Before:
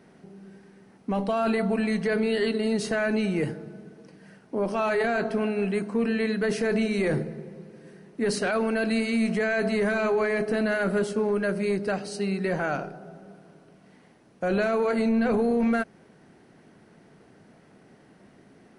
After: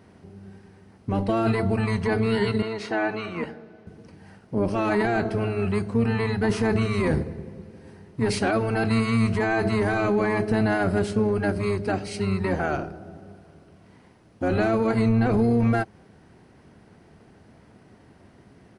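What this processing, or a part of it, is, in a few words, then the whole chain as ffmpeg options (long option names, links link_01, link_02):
octave pedal: -filter_complex "[0:a]asettb=1/sr,asplit=3[link_01][link_02][link_03];[link_01]atrim=end=2.624[link_04];[link_02]atrim=start=2.62:end=3.87,asetpts=PTS-STARTPTS,afade=type=in:duration=0.004:curve=qsin,afade=type=out:start_time=1.246:duration=0.004:curve=qsin,acrossover=split=390 5000:gain=0.0708 1 0.126[link_05][link_06][link_07];[link_05][link_06][link_07]amix=inputs=3:normalize=0[link_08];[link_03]atrim=start=3.866[link_09];[link_04][link_08]acrossfade=duration=0.004:curve1=hsin:curve2=qsin[link_10];[link_10][link_09]acrossfade=duration=0.004:curve1=qsin:curve2=hsin,asplit=2[link_11][link_12];[link_12]asetrate=22050,aresample=44100,atempo=2,volume=-1dB[link_13];[link_11][link_13]amix=inputs=2:normalize=0"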